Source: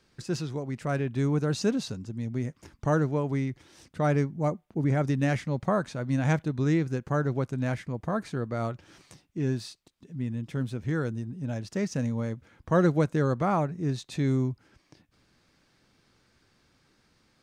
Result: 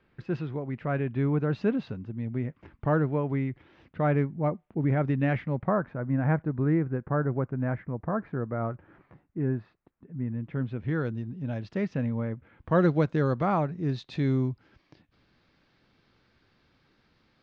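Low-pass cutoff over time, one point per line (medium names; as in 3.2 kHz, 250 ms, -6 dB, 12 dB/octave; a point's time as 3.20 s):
low-pass 24 dB/octave
5.38 s 2.8 kHz
5.88 s 1.8 kHz
10.20 s 1.8 kHz
11.05 s 3.8 kHz
11.70 s 3.8 kHz
12.35 s 2.3 kHz
12.89 s 4.4 kHz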